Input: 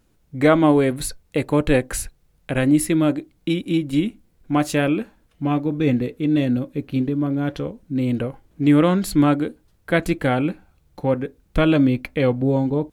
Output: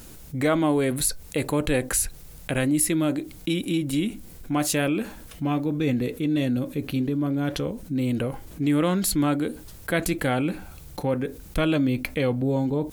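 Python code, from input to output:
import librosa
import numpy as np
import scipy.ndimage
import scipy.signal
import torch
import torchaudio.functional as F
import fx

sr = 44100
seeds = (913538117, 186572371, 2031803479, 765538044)

y = fx.high_shelf(x, sr, hz=4900.0, db=12.0)
y = fx.env_flatten(y, sr, amount_pct=50)
y = y * librosa.db_to_amplitude(-8.0)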